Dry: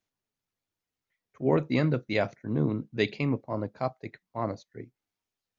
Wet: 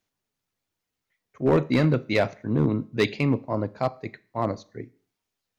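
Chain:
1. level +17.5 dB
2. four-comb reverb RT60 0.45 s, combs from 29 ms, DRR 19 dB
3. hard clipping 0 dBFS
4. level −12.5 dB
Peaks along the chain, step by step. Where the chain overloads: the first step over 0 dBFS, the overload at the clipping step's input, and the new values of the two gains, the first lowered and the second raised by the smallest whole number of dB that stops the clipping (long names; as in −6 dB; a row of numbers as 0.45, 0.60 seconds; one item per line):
+7.5, +7.5, 0.0, −12.5 dBFS
step 1, 7.5 dB
step 1 +9.5 dB, step 4 −4.5 dB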